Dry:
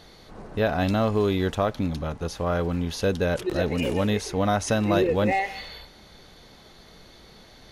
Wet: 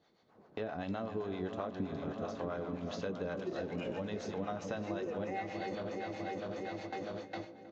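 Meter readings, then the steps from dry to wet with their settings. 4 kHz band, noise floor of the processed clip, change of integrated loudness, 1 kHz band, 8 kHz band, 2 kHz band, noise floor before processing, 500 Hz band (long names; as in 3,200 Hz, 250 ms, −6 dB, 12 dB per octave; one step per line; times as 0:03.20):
−16.0 dB, −64 dBFS, −14.5 dB, −12.5 dB, −20.0 dB, −14.0 dB, −51 dBFS, −12.5 dB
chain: feedback delay that plays each chunk backwards 324 ms, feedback 78%, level −10 dB
noise gate with hold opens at −28 dBFS
Bessel high-pass filter 180 Hz, order 2
high-shelf EQ 2,700 Hz −9.5 dB
downward compressor 5 to 1, threshold −41 dBFS, peak gain reduction 20 dB
two-band tremolo in antiphase 7.7 Hz, depth 70%, crossover 510 Hz
double-tracking delay 21 ms −13 dB
feedback echo with a low-pass in the loop 315 ms, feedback 85%, low-pass 1,500 Hz, level −15.5 dB
downsampling to 16,000 Hz
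level +6.5 dB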